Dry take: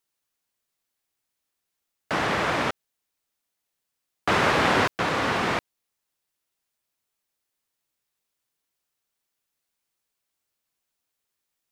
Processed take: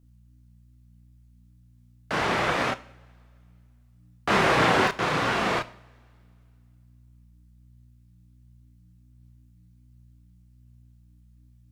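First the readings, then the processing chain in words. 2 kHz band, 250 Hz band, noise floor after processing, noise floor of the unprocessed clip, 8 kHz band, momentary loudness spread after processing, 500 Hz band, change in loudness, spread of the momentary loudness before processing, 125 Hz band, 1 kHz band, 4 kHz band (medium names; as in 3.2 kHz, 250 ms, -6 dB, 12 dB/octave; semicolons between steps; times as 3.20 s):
0.0 dB, 0.0 dB, -57 dBFS, -82 dBFS, -0.5 dB, 13 LU, +0.5 dB, -0.5 dB, 10 LU, +1.0 dB, 0.0 dB, -0.5 dB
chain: hum 60 Hz, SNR 26 dB; chorus voices 6, 0.45 Hz, delay 30 ms, depth 4.6 ms; two-slope reverb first 0.5 s, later 2.5 s, from -21 dB, DRR 13 dB; trim +2.5 dB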